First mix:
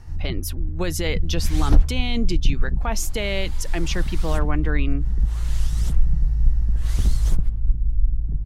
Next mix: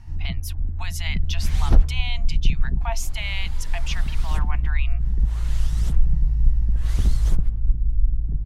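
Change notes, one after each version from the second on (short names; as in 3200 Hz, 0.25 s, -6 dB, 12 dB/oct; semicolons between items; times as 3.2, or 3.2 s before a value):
speech: add rippled Chebyshev high-pass 660 Hz, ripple 6 dB; background: add tone controls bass 0 dB, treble -4 dB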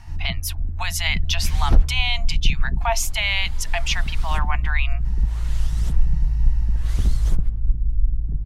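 speech +8.5 dB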